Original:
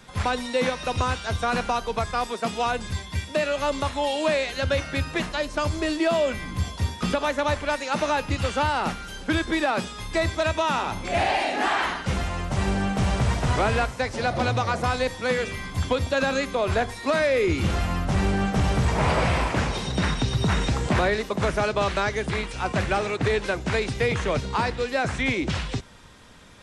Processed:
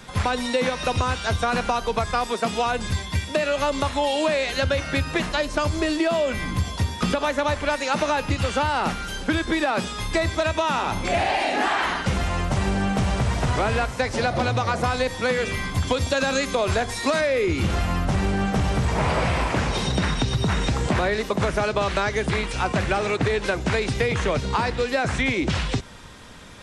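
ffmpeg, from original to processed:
-filter_complex "[0:a]asettb=1/sr,asplit=3[s0][s1][s2];[s0]atrim=end=15.874[s3];[s1]atrim=start=15.87:end=17.21,asetpts=PTS-STARTPTS,afade=t=in:d=0.004:c=qsin,afade=t=out:st=1.336:d=0.004:c=qsin,equalizer=f=7100:w=0.64:g=6.5[s4];[s2]atrim=start=17.206[s5];[s3][s4]acrossfade=d=0.004:c1=hsin:c2=qsin[s6];[s6][s5]acrossfade=d=0.004:c1=qsin:c2=hsin,acompressor=threshold=0.0562:ratio=6,volume=2"

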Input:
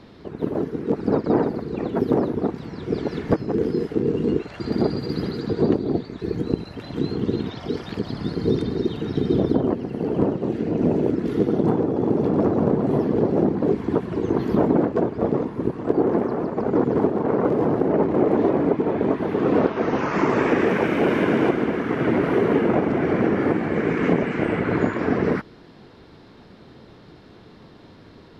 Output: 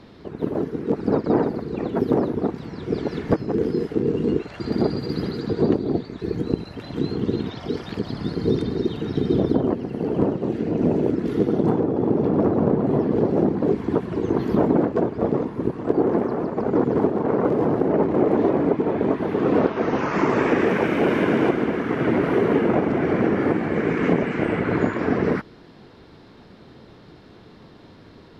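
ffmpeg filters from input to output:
-filter_complex "[0:a]asettb=1/sr,asplit=3[s0][s1][s2];[s0]atrim=end=11.804[s3];[s1]atrim=start=11.8:end=13.12,asetpts=PTS-STARTPTS,afade=t=in:d=0.004:c=qsin,afade=t=out:st=1.316:d=0.004:c=qsin,aemphasis=mode=reproduction:type=cd[s4];[s2]atrim=start=13.116[s5];[s3][s4]acrossfade=d=0.004:c1=hsin:c2=qsin[s6];[s6][s5]acrossfade=d=0.004:c1=qsin:c2=hsin"

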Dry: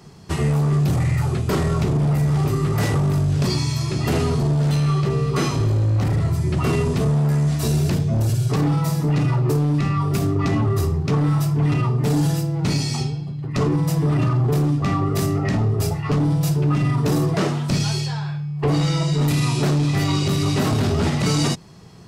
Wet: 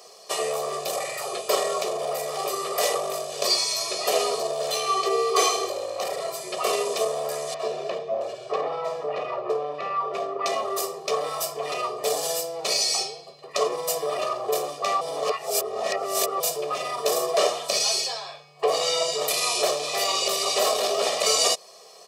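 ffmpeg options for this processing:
-filter_complex "[0:a]asettb=1/sr,asplit=3[s0][s1][s2];[s0]atrim=end=4.744[s3];[s1]atrim=start=4.74:end=5.7,asetpts=PTS-STARTPTS,afade=t=in:d=0.004:c=qsin,afade=t=out:st=0.956:d=0.004:c=qsin,aecho=1:1:2.6:0.73,atrim=end_sample=42336[s4];[s2]atrim=start=5.696[s5];[s3][s4]acrossfade=d=0.004:c1=hsin:c2=qsin[s6];[s6][s5]acrossfade=d=0.004:c1=qsin:c2=hsin,asettb=1/sr,asplit=3[s7][s8][s9];[s7]atrim=end=7.544[s10];[s8]atrim=start=7.54:end=10.46,asetpts=PTS-STARTPTS,afade=t=in:d=0.004:c=qsin,afade=t=out:st=2.916:d=0.004:c=qsin,lowpass=2100[s11];[s9]atrim=start=10.456[s12];[s10][s11]acrossfade=d=0.004:c1=hsin:c2=qsin[s13];[s13][s12]acrossfade=d=0.004:c1=qsin:c2=hsin,asplit=3[s14][s15][s16];[s14]atrim=end=15.012[s17];[s15]atrim=start=15.008:end=16.402,asetpts=PTS-STARTPTS,areverse[s18];[s16]atrim=start=16.398[s19];[s17][s18]acrossfade=d=0.004:c1=hsin:c2=hsin[s20];[s20][s19]acrossfade=d=0.004:c1=hsin:c2=hsin,highpass=f=490:w=0.5412,highpass=f=490:w=1.3066,equalizer=f=1600:t=o:w=0.97:g=-13,aecho=1:1:1.7:0.81,volume=1.78"

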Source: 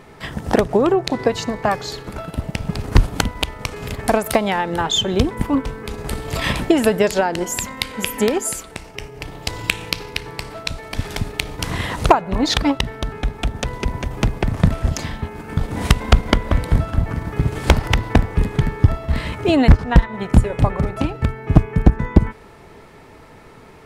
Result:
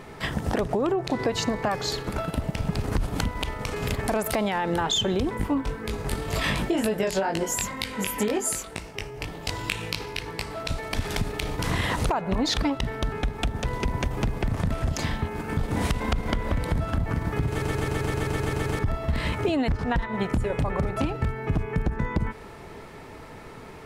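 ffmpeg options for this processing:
-filter_complex "[0:a]asettb=1/sr,asplit=3[s0][s1][s2];[s0]atrim=end=5.374[s3];[s1]atrim=start=5.37:end=10.6,asetpts=PTS-STARTPTS,afade=t=in:d=0.004:c=qsin,afade=t=out:st=5.226:d=0.004:c=qsin,flanger=delay=18.5:depth=3:speed=2[s4];[s2]atrim=start=10.596[s5];[s3][s4]acrossfade=d=0.004:c1=hsin:c2=qsin[s6];[s6][s5]acrossfade=d=0.004:c1=qsin:c2=hsin,asplit=11[s7][s8][s9][s10][s11][s12][s13][s14][s15][s16][s17];[s7]atrim=end=17.622[s18];[s8]atrim=start=17.488:end=17.622[s19];[s9]atrim=start=17.488:end=17.622[s20];[s10]atrim=start=17.488:end=17.622[s21];[s11]atrim=start=17.488:end=17.622[s22];[s12]atrim=start=17.488:end=17.622[s23];[s13]atrim=start=17.488:end=17.622[s24];[s14]atrim=start=17.488:end=17.622[s25];[s15]atrim=start=17.488:end=17.622[s26];[s16]atrim=start=17.488:end=17.622[s27];[s17]atrim=start=18.788[s28];[s18][s19]acrossfade=d=0.004:c1=hsin:c2=hsin[s29];[s29][s20]acrossfade=d=0.004:c1=hsin:c2=hsin[s30];[s30][s21]acrossfade=d=0.004:c1=hsin:c2=hsin[s31];[s31][s22]acrossfade=d=0.004:c1=hsin:c2=hsin[s32];[s32][s23]acrossfade=d=0.004:c1=hsin:c2=hsin[s33];[s33][s24]acrossfade=d=0.004:c1=hsin:c2=hsin[s34];[s34][s25]acrossfade=d=0.004:c1=hsin:c2=hsin[s35];[s35][s26]acrossfade=d=0.004:c1=hsin:c2=hsin[s36];[s36][s27]acrossfade=d=0.004:c1=hsin:c2=hsin[s37];[s37][s28]acrossfade=d=0.004:c1=hsin:c2=hsin,alimiter=limit=0.224:level=0:latency=1:release=22,acompressor=threshold=0.0794:ratio=6,volume=1.12"

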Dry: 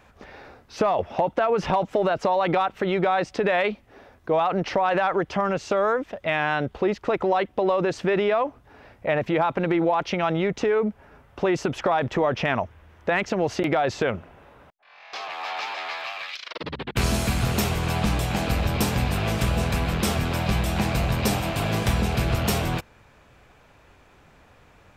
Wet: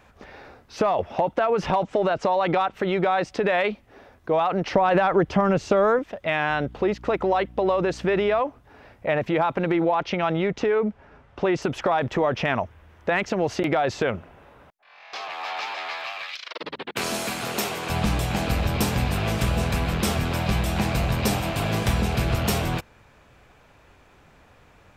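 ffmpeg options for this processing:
-filter_complex "[0:a]asettb=1/sr,asplit=3[s0][s1][s2];[s0]atrim=end=1.844[s3];[s1]atrim=start=1.84:end=2.73,asetpts=PTS-STARTPTS,afade=t=in:d=0.004:c=qsin,afade=t=out:st=0.886:d=0.004:c=qsin,lowpass=f=9100:w=0.5412,lowpass=f=9100:w=1.3066[s4];[s2]atrim=start=2.726[s5];[s3][s4]acrossfade=d=0.004:c1=hsin:c2=qsin[s6];[s6][s5]acrossfade=d=0.004:c1=qsin:c2=hsin,asettb=1/sr,asplit=3[s7][s8][s9];[s7]atrim=end=4.744[s10];[s8]atrim=start=4.74:end=5.99,asetpts=PTS-STARTPTS,afade=t=in:d=0.004:c=qsin,afade=t=out:st=1.246:d=0.004:c=qsin,lowshelf=f=410:g=8.5[s11];[s9]atrim=start=5.986[s12];[s10][s11]acrossfade=d=0.004:c1=hsin:c2=qsin[s13];[s13][s12]acrossfade=d=0.004:c1=qsin:c2=hsin,asettb=1/sr,asplit=3[s14][s15][s16];[s14]atrim=end=6.494[s17];[s15]atrim=start=6.49:end=8.4,asetpts=PTS-STARTPTS,afade=t=in:d=0.004:c=qsin,afade=t=out:st=1.906:d=0.004:c=qsin,aeval=exprs='val(0)+0.00708*(sin(2*PI*60*n/s)+sin(2*PI*2*60*n/s)/2+sin(2*PI*3*60*n/s)/3+sin(2*PI*4*60*n/s)/4+sin(2*PI*5*60*n/s)/5)':c=same[s18];[s16]atrim=start=8.396[s19];[s17][s18]acrossfade=d=0.004:c1=hsin:c2=qsin[s20];[s20][s19]acrossfade=d=0.004:c1=qsin:c2=hsin,asettb=1/sr,asplit=3[s21][s22][s23];[s21]atrim=end=9.834[s24];[s22]atrim=start=9.83:end=11.62,asetpts=PTS-STARTPTS,afade=t=in:d=0.004:c=qsin,afade=t=out:st=1.786:d=0.004:c=qsin,lowpass=5900[s25];[s23]atrim=start=11.616[s26];[s24][s25]acrossfade=d=0.004:c1=hsin:c2=qsin[s27];[s27][s26]acrossfade=d=0.004:c1=qsin:c2=hsin,asettb=1/sr,asplit=3[s28][s29][s30];[s28]atrim=end=16.244[s31];[s29]atrim=start=16.24:end=17.9,asetpts=PTS-STARTPTS,afade=t=in:d=0.004:c=qsin,afade=t=out:st=1.656:d=0.004:c=qsin,highpass=300[s32];[s30]atrim=start=17.896[s33];[s31][s32]acrossfade=d=0.004:c1=hsin:c2=qsin[s34];[s34][s33]acrossfade=d=0.004:c1=qsin:c2=hsin"

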